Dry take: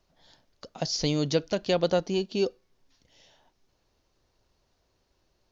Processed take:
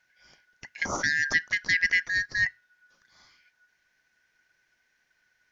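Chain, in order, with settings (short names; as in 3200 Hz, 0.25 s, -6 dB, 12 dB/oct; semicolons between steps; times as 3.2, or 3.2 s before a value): four-band scrambler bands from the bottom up 4123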